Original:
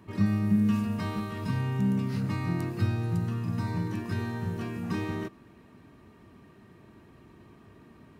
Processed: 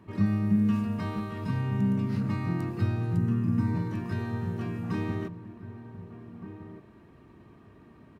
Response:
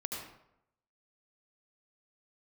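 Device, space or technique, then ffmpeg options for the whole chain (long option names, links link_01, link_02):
behind a face mask: -filter_complex "[0:a]highshelf=frequency=3300:gain=-8,asettb=1/sr,asplit=3[link_01][link_02][link_03];[link_01]atrim=end=3.174[link_04];[link_02]atrim=start=3.17:end=3.75,asetpts=PTS-STARTPTS,afade=type=in:duration=0.004:curve=qsin,afade=type=out:start_time=0.576:duration=0.004:curve=qsin,equalizer=frequency=100:width_type=o:width=0.67:gain=3,equalizer=frequency=250:width_type=o:width=0.67:gain=9,equalizer=frequency=630:width_type=o:width=0.67:gain=-7,equalizer=frequency=4000:width_type=o:width=0.67:gain=-7[link_05];[link_03]atrim=start=3.746[link_06];[link_04][link_05]acrossfade=duration=0.004:curve1=hsin:curve2=qsin[link_07];[link_07][link_06]acrossfade=duration=0.004:curve1=qsin:curve2=hsin,asplit=2[link_08][link_09];[link_09]adelay=1516,volume=-11dB,highshelf=frequency=4000:gain=-34.1[link_10];[link_08][link_10]amix=inputs=2:normalize=0"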